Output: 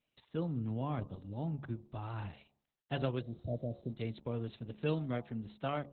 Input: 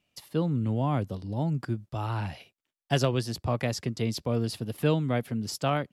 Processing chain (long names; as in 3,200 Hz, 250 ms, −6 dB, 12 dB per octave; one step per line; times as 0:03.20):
hum removal 70.67 Hz, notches 17
healed spectral selection 0:03.24–0:03.89, 730–8,900 Hz after
level −8.5 dB
Opus 8 kbit/s 48,000 Hz